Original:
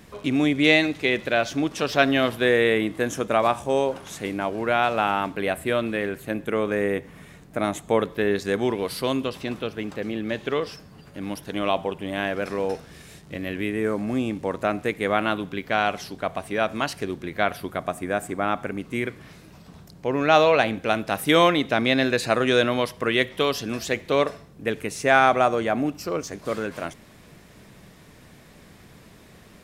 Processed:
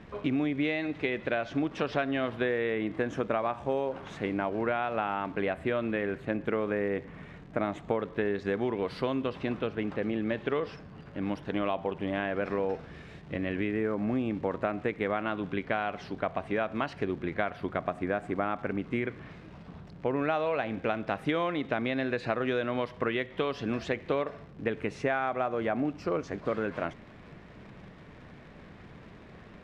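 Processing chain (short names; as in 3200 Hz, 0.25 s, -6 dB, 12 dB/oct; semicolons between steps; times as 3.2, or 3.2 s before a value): compressor 10:1, threshold -25 dBFS, peak gain reduction 14 dB; crackle 140/s -38 dBFS; LPF 2400 Hz 12 dB/oct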